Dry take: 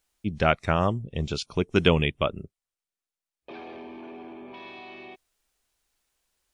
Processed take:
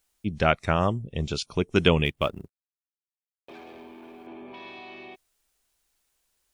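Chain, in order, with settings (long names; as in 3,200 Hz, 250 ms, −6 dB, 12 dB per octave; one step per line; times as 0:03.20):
0:02.05–0:04.27: mu-law and A-law mismatch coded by A
high-shelf EQ 7,800 Hz +5.5 dB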